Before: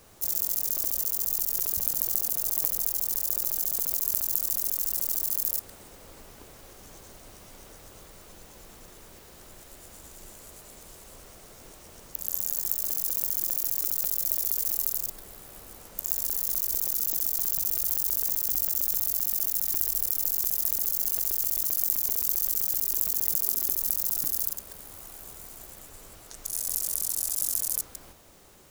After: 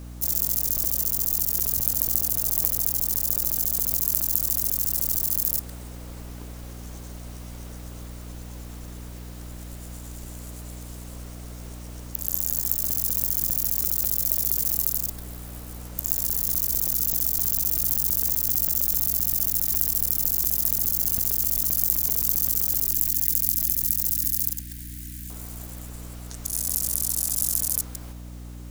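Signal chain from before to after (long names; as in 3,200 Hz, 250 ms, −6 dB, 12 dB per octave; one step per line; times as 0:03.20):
0:22.92–0:25.30: elliptic band-stop filter 310–1,700 Hz, stop band 40 dB
mains hum 60 Hz, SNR 12 dB
level +3.5 dB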